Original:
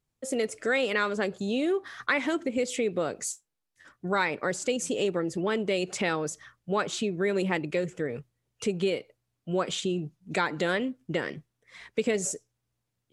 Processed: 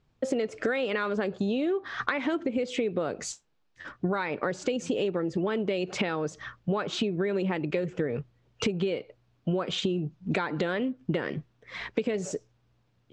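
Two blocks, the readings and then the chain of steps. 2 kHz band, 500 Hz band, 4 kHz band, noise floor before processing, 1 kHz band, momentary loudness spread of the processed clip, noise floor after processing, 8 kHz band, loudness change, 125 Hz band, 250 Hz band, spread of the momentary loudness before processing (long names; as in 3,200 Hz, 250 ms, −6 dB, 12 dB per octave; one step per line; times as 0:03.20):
−3.0 dB, −0.5 dB, −1.0 dB, −82 dBFS, −2.0 dB, 8 LU, −69 dBFS, −7.5 dB, −1.0 dB, +3.0 dB, +1.5 dB, 8 LU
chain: in parallel at −3 dB: brickwall limiter −20.5 dBFS, peak gain reduction 8.5 dB
on the sum: high-frequency loss of the air 180 metres
downward compressor 10 to 1, threshold −34 dBFS, peak gain reduction 15 dB
parametric band 2,000 Hz −3 dB 0.31 octaves
level +9 dB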